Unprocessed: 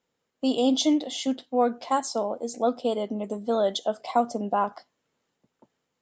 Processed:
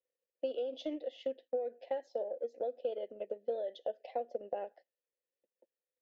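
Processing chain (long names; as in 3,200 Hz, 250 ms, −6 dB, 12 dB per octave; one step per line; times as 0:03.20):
noise gate −42 dBFS, range −7 dB
formant filter e
brickwall limiter −31.5 dBFS, peak gain reduction 11 dB
loudspeaker in its box 240–5,700 Hz, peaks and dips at 350 Hz +6 dB, 810 Hz +4 dB, 1,300 Hz −10 dB
transient designer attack +7 dB, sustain −4 dB
level −1.5 dB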